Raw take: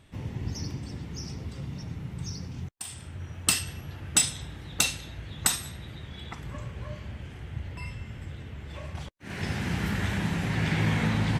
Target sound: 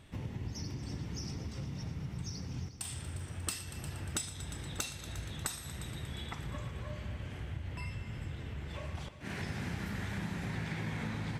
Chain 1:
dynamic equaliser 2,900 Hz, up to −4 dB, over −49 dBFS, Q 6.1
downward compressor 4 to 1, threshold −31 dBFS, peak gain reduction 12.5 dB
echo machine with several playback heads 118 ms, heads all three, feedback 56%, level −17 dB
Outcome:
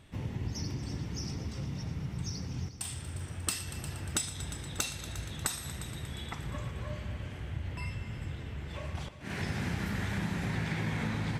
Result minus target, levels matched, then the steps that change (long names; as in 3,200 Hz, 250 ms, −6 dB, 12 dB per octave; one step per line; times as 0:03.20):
downward compressor: peak gain reduction −4.5 dB
change: downward compressor 4 to 1, threshold −37 dBFS, peak gain reduction 17 dB